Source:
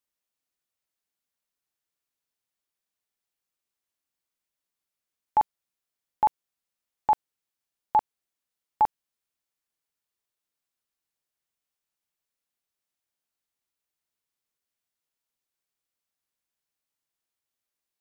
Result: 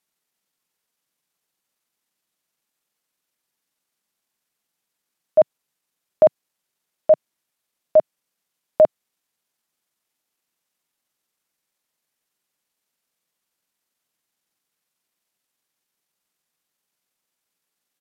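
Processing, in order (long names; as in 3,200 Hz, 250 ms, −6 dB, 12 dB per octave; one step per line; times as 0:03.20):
pitch shifter −5.5 semitones
low shelf with overshoot 120 Hz −7 dB, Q 1.5
level +8 dB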